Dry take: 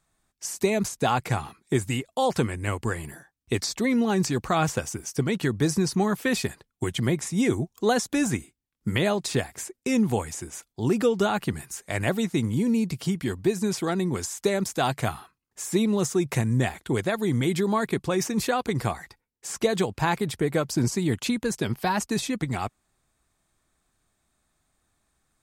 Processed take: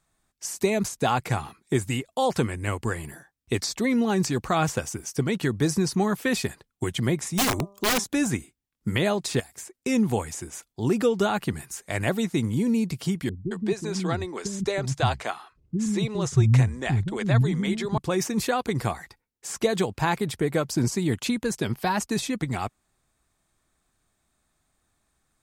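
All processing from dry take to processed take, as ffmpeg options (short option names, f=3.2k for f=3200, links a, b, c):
-filter_complex "[0:a]asettb=1/sr,asplit=3[a][b][c];[a]atrim=end=7.344[d];[b]atrim=start=7.34:end=8.04,asetpts=PTS-STARTPTS,afade=t=in:d=0.004:c=qsin,afade=t=out:st=0.696:d=0.004:c=qsin,aeval=exprs='(mod(7.5*val(0)+1,2)-1)/7.5':c=same,bandreject=f=199.3:t=h:w=4,bandreject=f=398.6:t=h:w=4,bandreject=f=597.9:t=h:w=4,bandreject=f=797.2:t=h:w=4,bandreject=f=996.5:t=h:w=4,bandreject=f=1.1958k:t=h:w=4[e];[c]atrim=start=8.036[f];[d][e]acrossfade=d=0.004:c1=hsin:c2=qsin[g];[g][f]acrossfade=d=0.004:c1=qsin:c2=hsin,asettb=1/sr,asplit=3[h][i][j];[h]atrim=end=9.404[k];[i]atrim=start=9.4:end=9.8,asetpts=PTS-STARTPTS,afade=t=in:d=0.004:c=qsin,afade=t=out:st=0.396:d=0.004:c=qsin,acrossover=split=710|4400[l][m][n];[l]acompressor=threshold=-48dB:ratio=4[o];[m]acompressor=threshold=-49dB:ratio=4[p];[n]acompressor=threshold=-38dB:ratio=4[q];[o][p][q]amix=inputs=3:normalize=0,volume=30dB,asoftclip=hard,volume=-30dB[r];[j]atrim=start=9.796[s];[k][r]acrossfade=d=0.004:c1=hsin:c2=qsin[t];[t][s]acrossfade=d=0.004:c1=qsin:c2=hsin,asettb=1/sr,asplit=3[u][v][w];[u]atrim=end=13.294[x];[v]atrim=start=13.29:end=17.98,asetpts=PTS-STARTPTS,afade=t=in:d=0.004:c=qsin,afade=t=out:st=4.686:d=0.004:c=qsin,lowpass=6.8k,asubboost=boost=5.5:cutoff=130,acrossover=split=290[y][z];[z]adelay=220[aa];[y][aa]amix=inputs=2:normalize=0,atrim=end_sample=206829[ab];[w]atrim=start=17.976[ac];[x][ab]acrossfade=d=0.004:c1=hsin:c2=qsin[ad];[ad][ac]acrossfade=d=0.004:c1=qsin:c2=hsin"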